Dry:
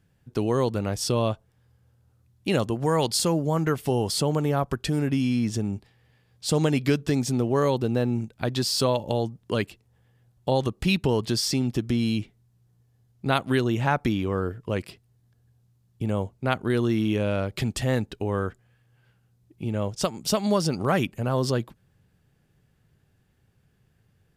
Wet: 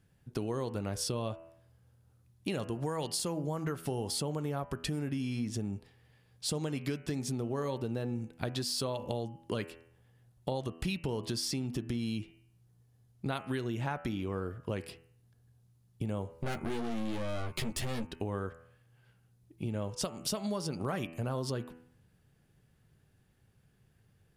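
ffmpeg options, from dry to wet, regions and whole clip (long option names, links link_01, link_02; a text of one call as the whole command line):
ffmpeg -i in.wav -filter_complex "[0:a]asettb=1/sr,asplit=3[link_01][link_02][link_03];[link_01]atrim=end=16.294[link_04];[link_02]atrim=start=16.29:end=18.07,asetpts=PTS-STARTPTS,afade=type=in:duration=0.004:curve=qsin,afade=type=out:start_time=1.776:duration=0.004:curve=qsin,acontrast=84,aeval=exprs='(tanh(15.8*val(0)+0.6)-tanh(0.6))/15.8':channel_layout=same,asplit=2[link_05][link_06];[link_06]adelay=13,volume=-3.5dB[link_07];[link_05][link_07]amix=inputs=2:normalize=0,atrim=end_sample=78498[link_08];[link_03]atrim=start=18.066[link_09];[link_04][link_08]acrossfade=duration=0.004:curve1=hsin:curve2=qsin[link_10];[link_10][link_09]acrossfade=duration=0.004:curve1=qsin:curve2=hsin,equalizer=frequency=9900:width=7.6:gain=7,bandreject=frequency=82.39:width_type=h:width=4,bandreject=frequency=164.78:width_type=h:width=4,bandreject=frequency=247.17:width_type=h:width=4,bandreject=frequency=329.56:width_type=h:width=4,bandreject=frequency=411.95:width_type=h:width=4,bandreject=frequency=494.34:width_type=h:width=4,bandreject=frequency=576.73:width_type=h:width=4,bandreject=frequency=659.12:width_type=h:width=4,bandreject=frequency=741.51:width_type=h:width=4,bandreject=frequency=823.9:width_type=h:width=4,bandreject=frequency=906.29:width_type=h:width=4,bandreject=frequency=988.68:width_type=h:width=4,bandreject=frequency=1071.07:width_type=h:width=4,bandreject=frequency=1153.46:width_type=h:width=4,bandreject=frequency=1235.85:width_type=h:width=4,bandreject=frequency=1318.24:width_type=h:width=4,bandreject=frequency=1400.63:width_type=h:width=4,bandreject=frequency=1483.02:width_type=h:width=4,bandreject=frequency=1565.41:width_type=h:width=4,bandreject=frequency=1647.8:width_type=h:width=4,bandreject=frequency=1730.19:width_type=h:width=4,bandreject=frequency=1812.58:width_type=h:width=4,bandreject=frequency=1894.97:width_type=h:width=4,bandreject=frequency=1977.36:width_type=h:width=4,bandreject=frequency=2059.75:width_type=h:width=4,bandreject=frequency=2142.14:width_type=h:width=4,bandreject=frequency=2224.53:width_type=h:width=4,bandreject=frequency=2306.92:width_type=h:width=4,bandreject=frequency=2389.31:width_type=h:width=4,bandreject=frequency=2471.7:width_type=h:width=4,bandreject=frequency=2554.09:width_type=h:width=4,bandreject=frequency=2636.48:width_type=h:width=4,bandreject=frequency=2718.87:width_type=h:width=4,bandreject=frequency=2801.26:width_type=h:width=4,bandreject=frequency=2883.65:width_type=h:width=4,bandreject=frequency=2966.04:width_type=h:width=4,bandreject=frequency=3048.43:width_type=h:width=4,acompressor=threshold=-30dB:ratio=5,volume=-2dB" out.wav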